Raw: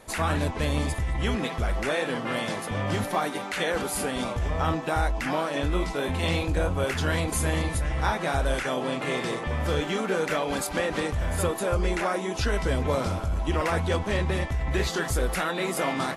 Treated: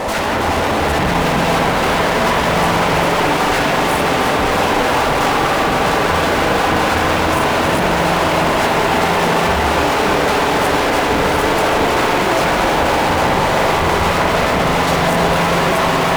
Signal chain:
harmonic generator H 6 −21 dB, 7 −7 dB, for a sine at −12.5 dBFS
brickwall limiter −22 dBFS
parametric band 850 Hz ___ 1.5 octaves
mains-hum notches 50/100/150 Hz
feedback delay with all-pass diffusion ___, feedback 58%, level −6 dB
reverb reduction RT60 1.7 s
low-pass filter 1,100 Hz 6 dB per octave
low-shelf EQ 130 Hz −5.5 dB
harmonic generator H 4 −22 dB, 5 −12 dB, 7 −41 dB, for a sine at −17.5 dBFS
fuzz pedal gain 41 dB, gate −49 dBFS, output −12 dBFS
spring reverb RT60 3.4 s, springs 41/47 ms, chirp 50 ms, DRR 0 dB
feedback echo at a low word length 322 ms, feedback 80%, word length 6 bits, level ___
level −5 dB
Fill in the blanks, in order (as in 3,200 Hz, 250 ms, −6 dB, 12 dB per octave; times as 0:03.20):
+7.5 dB, 1,335 ms, −7.5 dB